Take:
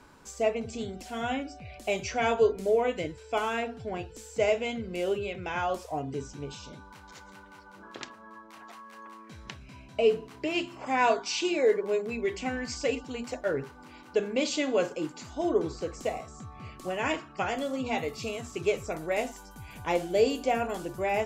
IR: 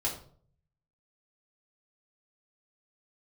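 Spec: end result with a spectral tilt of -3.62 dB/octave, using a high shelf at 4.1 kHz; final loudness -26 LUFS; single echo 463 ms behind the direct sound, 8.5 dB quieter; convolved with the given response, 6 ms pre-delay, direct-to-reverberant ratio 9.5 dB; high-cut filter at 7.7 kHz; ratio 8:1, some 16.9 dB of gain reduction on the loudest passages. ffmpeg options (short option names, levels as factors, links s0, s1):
-filter_complex "[0:a]lowpass=7700,highshelf=f=4100:g=8.5,acompressor=threshold=0.0158:ratio=8,aecho=1:1:463:0.376,asplit=2[s0][s1];[1:a]atrim=start_sample=2205,adelay=6[s2];[s1][s2]afir=irnorm=-1:irlink=0,volume=0.188[s3];[s0][s3]amix=inputs=2:normalize=0,volume=5.01"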